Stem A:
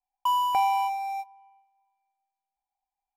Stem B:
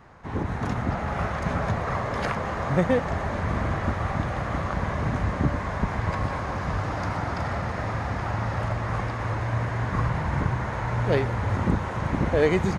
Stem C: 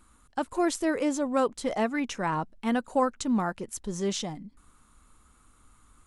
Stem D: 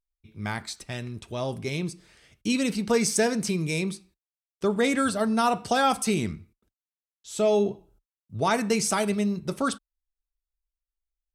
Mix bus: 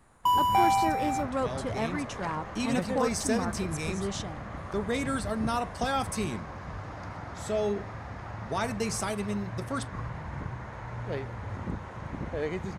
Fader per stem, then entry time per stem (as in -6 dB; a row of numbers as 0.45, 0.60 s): +0.5, -11.5, -5.0, -7.0 dB; 0.00, 0.00, 0.00, 0.10 s